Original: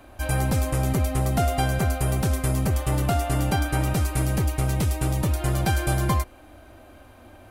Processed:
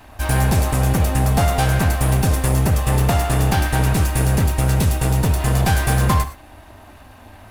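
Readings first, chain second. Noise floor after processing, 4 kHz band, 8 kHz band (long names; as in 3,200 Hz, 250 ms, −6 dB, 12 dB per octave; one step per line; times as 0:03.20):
−44 dBFS, +6.5 dB, +6.5 dB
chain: lower of the sound and its delayed copy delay 1.1 ms
reverb whose tail is shaped and stops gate 140 ms flat, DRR 9.5 dB
level +6.5 dB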